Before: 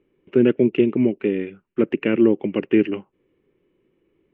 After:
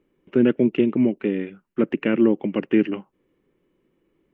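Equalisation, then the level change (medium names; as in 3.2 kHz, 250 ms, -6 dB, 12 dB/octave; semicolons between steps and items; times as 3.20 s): fifteen-band graphic EQ 100 Hz -8 dB, 400 Hz -6 dB, 2.5 kHz -5 dB; +2.0 dB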